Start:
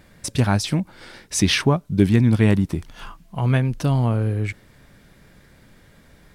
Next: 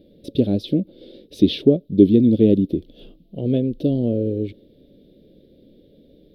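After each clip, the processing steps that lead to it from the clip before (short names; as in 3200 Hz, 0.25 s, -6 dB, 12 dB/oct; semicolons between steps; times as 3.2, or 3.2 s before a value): EQ curve 130 Hz 0 dB, 290 Hz +15 dB, 550 Hz +13 dB, 1000 Hz -29 dB, 1900 Hz -20 dB, 3600 Hz +6 dB, 7400 Hz -27 dB, 13000 Hz -5 dB; gain -7 dB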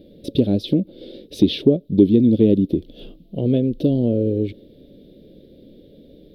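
compressor 1.5:1, threshold -24 dBFS, peak gain reduction 6.5 dB; gain +5 dB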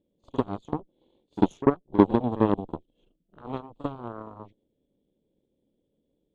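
nonlinear frequency compression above 3000 Hz 1.5:1; added harmonics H 3 -11 dB, 7 -31 dB, 8 -33 dB, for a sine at -1 dBFS; reverse echo 46 ms -16.5 dB; gain -1 dB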